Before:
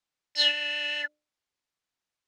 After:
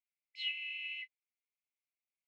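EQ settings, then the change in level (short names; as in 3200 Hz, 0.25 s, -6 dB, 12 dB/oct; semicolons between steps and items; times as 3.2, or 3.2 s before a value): brick-wall FIR high-pass 2000 Hz; air absorption 490 m; band shelf 4100 Hz -8.5 dB 1.1 oct; +1.0 dB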